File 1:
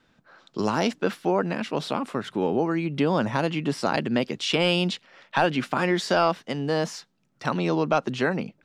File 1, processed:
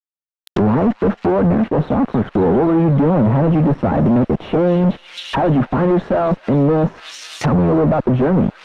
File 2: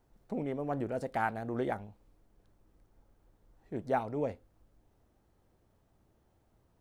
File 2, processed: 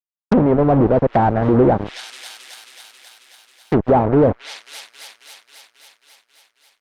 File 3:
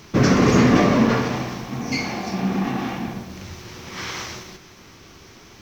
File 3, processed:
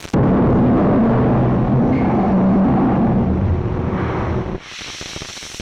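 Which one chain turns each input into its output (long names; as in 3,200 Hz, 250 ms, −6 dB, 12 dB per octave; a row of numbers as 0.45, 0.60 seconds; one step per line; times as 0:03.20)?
Butterworth band-reject 4,800 Hz, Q 5.1
low-shelf EQ 180 Hz +6.5 dB
fuzz pedal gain 37 dB, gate −39 dBFS
on a send: delay with a high-pass on its return 270 ms, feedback 72%, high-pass 3,600 Hz, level −3.5 dB
on the sum: treble cut that deepens with the level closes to 840 Hz, closed at −16 dBFS
Opus 48 kbit/s 48,000 Hz
loudness normalisation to −16 LKFS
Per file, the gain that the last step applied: +2.0, +5.0, +1.5 decibels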